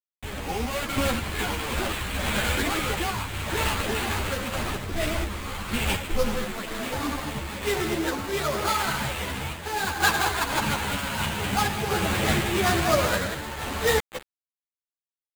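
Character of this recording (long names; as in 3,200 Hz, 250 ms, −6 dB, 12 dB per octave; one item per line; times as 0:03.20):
a quantiser's noise floor 6 bits, dither none
sample-and-hold tremolo 4.2 Hz
aliases and images of a low sample rate 5,600 Hz, jitter 20%
a shimmering, thickened sound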